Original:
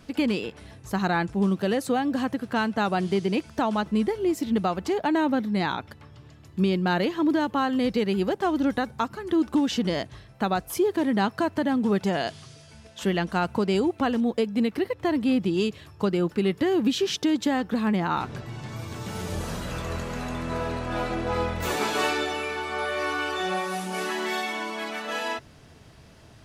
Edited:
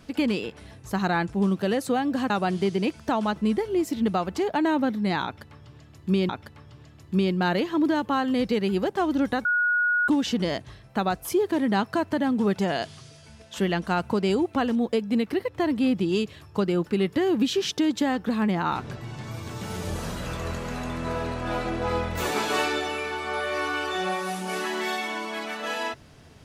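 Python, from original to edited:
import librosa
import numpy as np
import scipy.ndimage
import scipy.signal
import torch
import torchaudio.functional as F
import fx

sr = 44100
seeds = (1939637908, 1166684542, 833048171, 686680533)

y = fx.edit(x, sr, fx.cut(start_s=2.3, length_s=0.5),
    fx.repeat(start_s=5.74, length_s=1.05, count=2),
    fx.bleep(start_s=8.9, length_s=0.63, hz=1450.0, db=-19.5), tone=tone)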